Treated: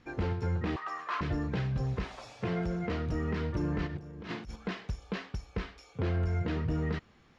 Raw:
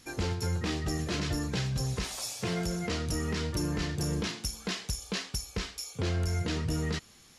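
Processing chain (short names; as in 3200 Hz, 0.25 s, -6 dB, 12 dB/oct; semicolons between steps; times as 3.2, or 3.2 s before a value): 0.76–1.21 resonant high-pass 1100 Hz, resonance Q 6.5; 3.86–4.56 negative-ratio compressor -37 dBFS, ratio -0.5; LPF 2000 Hz 12 dB/oct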